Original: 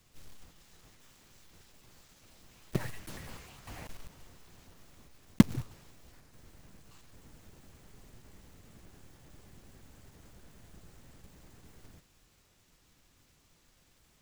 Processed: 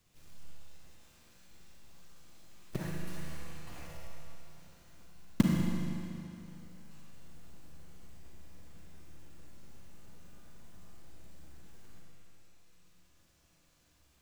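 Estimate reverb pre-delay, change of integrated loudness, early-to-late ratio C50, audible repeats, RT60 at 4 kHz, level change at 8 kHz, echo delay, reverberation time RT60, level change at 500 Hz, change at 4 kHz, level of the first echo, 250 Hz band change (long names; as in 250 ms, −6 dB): 34 ms, −3.0 dB, −1.5 dB, no echo audible, 2.5 s, −2.0 dB, no echo audible, 2.7 s, −2.0 dB, −2.0 dB, no echo audible, −2.0 dB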